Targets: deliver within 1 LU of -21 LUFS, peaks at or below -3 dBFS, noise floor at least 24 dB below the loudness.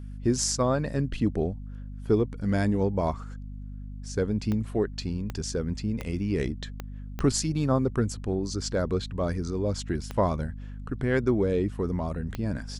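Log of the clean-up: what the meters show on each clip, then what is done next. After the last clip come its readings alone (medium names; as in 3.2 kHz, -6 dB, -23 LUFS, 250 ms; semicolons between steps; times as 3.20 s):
clicks found 7; hum 50 Hz; highest harmonic 250 Hz; hum level -35 dBFS; loudness -28.0 LUFS; peak level -9.0 dBFS; loudness target -21.0 LUFS
-> de-click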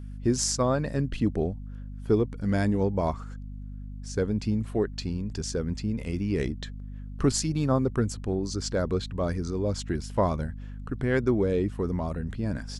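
clicks found 0; hum 50 Hz; highest harmonic 250 Hz; hum level -35 dBFS
-> de-hum 50 Hz, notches 5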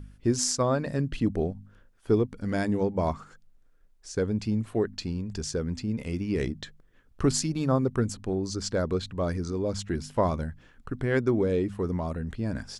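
hum not found; loudness -28.5 LUFS; peak level -9.0 dBFS; loudness target -21.0 LUFS
-> trim +7.5 dB; peak limiter -3 dBFS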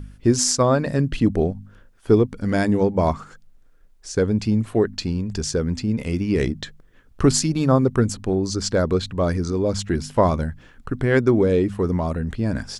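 loudness -21.5 LUFS; peak level -3.0 dBFS; noise floor -52 dBFS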